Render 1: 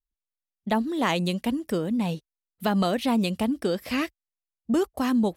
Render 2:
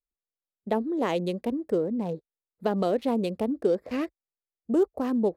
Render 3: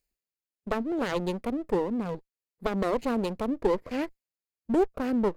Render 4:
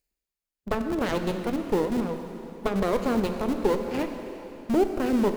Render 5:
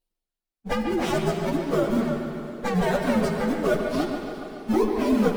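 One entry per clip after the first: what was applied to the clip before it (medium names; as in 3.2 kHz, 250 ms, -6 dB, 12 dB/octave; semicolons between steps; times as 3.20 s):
local Wiener filter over 15 samples; peaking EQ 450 Hz +13.5 dB 1.3 oct; trim -8.5 dB
comb filter that takes the minimum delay 0.43 ms; reverse; upward compressor, threshold -47 dBFS; reverse
in parallel at -4.5 dB: Schmitt trigger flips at -27 dBFS; on the sum: plate-style reverb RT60 3.5 s, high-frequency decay 0.9×, DRR 5.5 dB
frequency axis rescaled in octaves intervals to 126%; on a send: bucket-brigade echo 142 ms, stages 4096, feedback 64%, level -8 dB; on the sum: trim +5 dB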